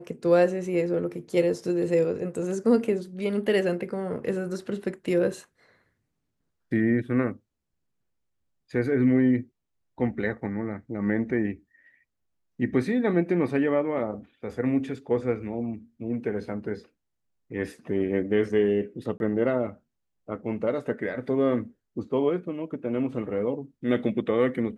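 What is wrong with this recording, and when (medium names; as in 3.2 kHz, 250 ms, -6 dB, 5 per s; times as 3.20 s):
19.18–19.20 s: dropout 21 ms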